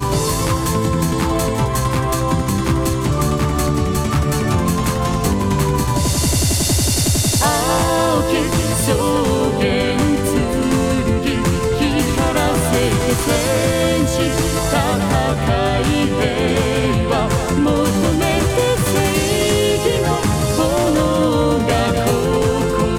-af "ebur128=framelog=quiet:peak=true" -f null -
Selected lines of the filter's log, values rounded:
Integrated loudness:
  I:         -16.7 LUFS
  Threshold: -26.7 LUFS
Loudness range:
  LRA:         2.1 LU
  Threshold: -36.6 LUFS
  LRA low:   -17.9 LUFS
  LRA high:  -15.8 LUFS
True peak:
  Peak:       -4.6 dBFS